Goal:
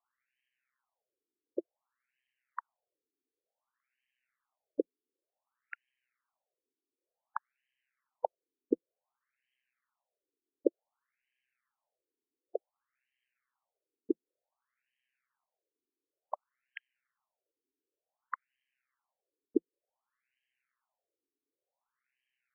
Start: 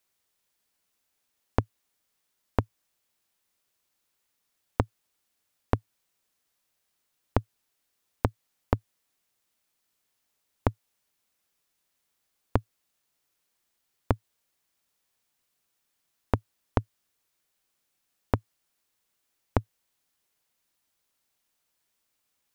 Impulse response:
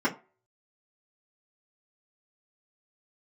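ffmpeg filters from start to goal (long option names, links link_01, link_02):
-af "aeval=exprs='val(0)*sin(2*PI*64*n/s)':channel_layout=same,afftfilt=real='re*between(b*sr/1024,320*pow(2300/320,0.5+0.5*sin(2*PI*0.55*pts/sr))/1.41,320*pow(2300/320,0.5+0.5*sin(2*PI*0.55*pts/sr))*1.41)':imag='im*between(b*sr/1024,320*pow(2300/320,0.5+0.5*sin(2*PI*0.55*pts/sr))/1.41,320*pow(2300/320,0.5+0.5*sin(2*PI*0.55*pts/sr))*1.41)':win_size=1024:overlap=0.75,volume=5dB"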